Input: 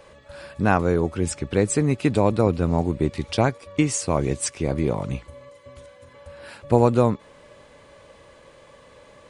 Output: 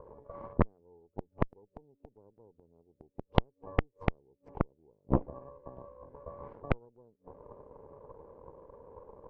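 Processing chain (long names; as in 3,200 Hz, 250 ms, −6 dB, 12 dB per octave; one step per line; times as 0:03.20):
low-pass with resonance 440 Hz, resonance Q 5
hum removal 92.98 Hz, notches 3
gate with flip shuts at −12 dBFS, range −40 dB
harmonic generator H 3 −12 dB, 8 −13 dB, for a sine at −8.5 dBFS
level +3 dB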